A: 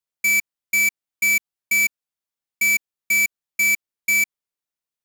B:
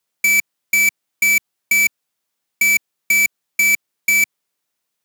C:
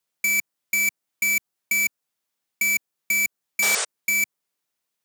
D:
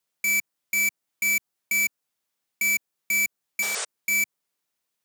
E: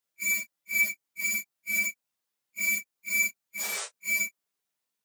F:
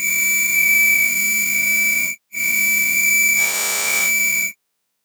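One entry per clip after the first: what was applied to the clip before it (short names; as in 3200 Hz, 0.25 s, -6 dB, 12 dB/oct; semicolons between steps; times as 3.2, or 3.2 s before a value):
HPF 120 Hz; in parallel at +3 dB: negative-ratio compressor -23 dBFS, ratio -0.5
painted sound noise, 3.62–3.85, 380–9500 Hz -19 dBFS; dynamic EQ 3000 Hz, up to -4 dB, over -29 dBFS, Q 0.89; gain -4.5 dB
limiter -19.5 dBFS, peak gain reduction 9 dB
phase scrambler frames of 0.1 s; gain -4 dB
spectral dilation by 0.48 s; gain +6 dB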